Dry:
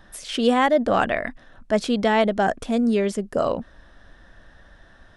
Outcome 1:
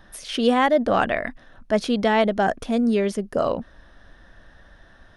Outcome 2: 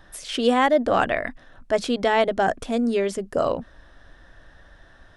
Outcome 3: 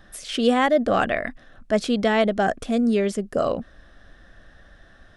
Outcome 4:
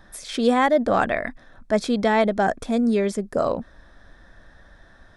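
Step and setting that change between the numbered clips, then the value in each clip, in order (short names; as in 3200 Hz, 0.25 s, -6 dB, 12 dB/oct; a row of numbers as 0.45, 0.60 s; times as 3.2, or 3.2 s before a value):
notch, frequency: 7600, 210, 930, 2900 Hz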